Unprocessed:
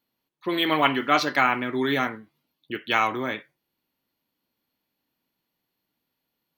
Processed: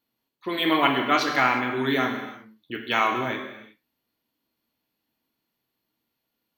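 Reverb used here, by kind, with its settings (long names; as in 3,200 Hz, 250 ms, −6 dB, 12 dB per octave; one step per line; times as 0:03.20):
reverb whose tail is shaped and stops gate 390 ms falling, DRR 3 dB
level −1.5 dB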